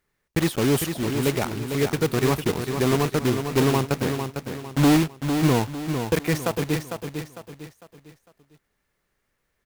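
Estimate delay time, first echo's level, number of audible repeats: 452 ms, −7.0 dB, 4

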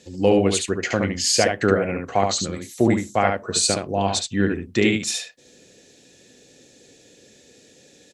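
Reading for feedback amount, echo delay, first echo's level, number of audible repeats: repeats not evenly spaced, 71 ms, −4.5 dB, 1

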